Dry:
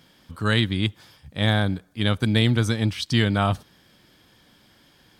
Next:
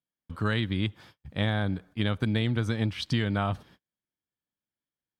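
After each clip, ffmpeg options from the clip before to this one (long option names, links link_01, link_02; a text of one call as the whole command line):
ffmpeg -i in.wav -af "agate=range=-40dB:threshold=-47dB:ratio=16:detection=peak,bass=frequency=250:gain=0,treble=frequency=4000:gain=-10,acompressor=threshold=-23dB:ratio=6" out.wav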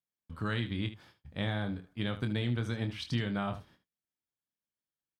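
ffmpeg -i in.wav -af "aecho=1:1:25|75:0.398|0.224,volume=-6.5dB" out.wav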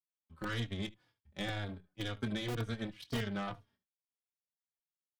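ffmpeg -i in.wav -filter_complex "[0:a]aeval=exprs='0.106*(cos(1*acos(clip(val(0)/0.106,-1,1)))-cos(1*PI/2))+0.00596*(cos(3*acos(clip(val(0)/0.106,-1,1)))-cos(3*PI/2))+0.00944*(cos(7*acos(clip(val(0)/0.106,-1,1)))-cos(7*PI/2))':channel_layout=same,acrossover=split=160[link_01][link_02];[link_01]aeval=exprs='(mod(39.8*val(0)+1,2)-1)/39.8':channel_layout=same[link_03];[link_03][link_02]amix=inputs=2:normalize=0,asplit=2[link_04][link_05];[link_05]adelay=3.6,afreqshift=-2[link_06];[link_04][link_06]amix=inputs=2:normalize=1,volume=1dB" out.wav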